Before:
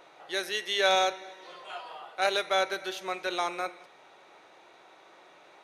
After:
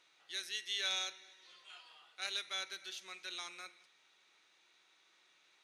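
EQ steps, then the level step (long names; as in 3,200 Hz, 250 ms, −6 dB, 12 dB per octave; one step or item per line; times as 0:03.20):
high-frequency loss of the air 81 metres
RIAA equalisation recording
guitar amp tone stack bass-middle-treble 6-0-2
+5.5 dB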